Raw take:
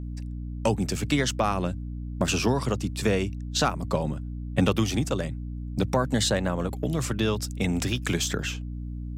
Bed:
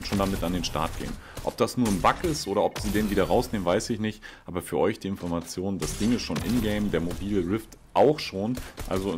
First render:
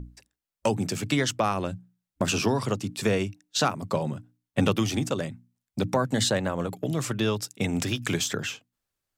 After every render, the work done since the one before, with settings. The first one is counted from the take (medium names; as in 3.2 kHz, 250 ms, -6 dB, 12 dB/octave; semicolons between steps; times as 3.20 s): hum notches 60/120/180/240/300 Hz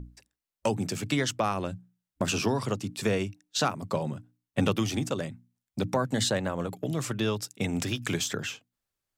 trim -2.5 dB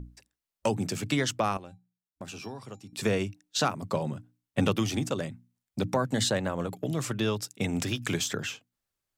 1.57–2.93 s: feedback comb 800 Hz, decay 0.19 s, harmonics odd, mix 80%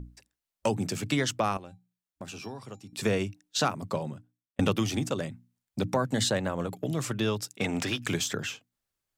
3.81–4.59 s: fade out; 7.57–8.06 s: overdrive pedal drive 13 dB, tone 3 kHz, clips at -17 dBFS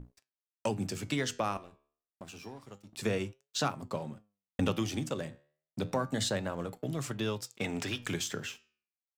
crossover distortion -52.5 dBFS; flange 0.28 Hz, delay 6.7 ms, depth 7.4 ms, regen +83%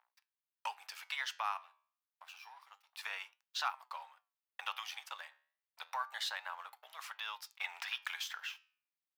elliptic high-pass 870 Hz, stop band 70 dB; peaking EQ 7.6 kHz -14.5 dB 0.8 oct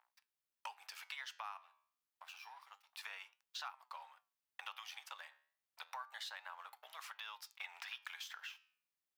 compression 2.5:1, threshold -48 dBFS, peak gain reduction 12 dB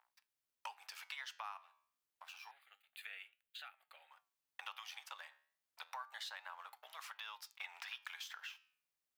2.51–4.11 s: static phaser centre 2.4 kHz, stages 4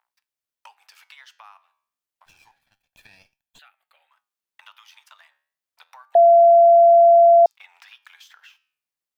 2.26–3.59 s: comb filter that takes the minimum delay 1.2 ms; 4.09–5.29 s: frequency shift +84 Hz; 6.15–7.46 s: bleep 682 Hz -8 dBFS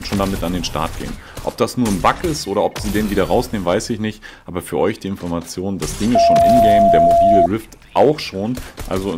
add bed +7 dB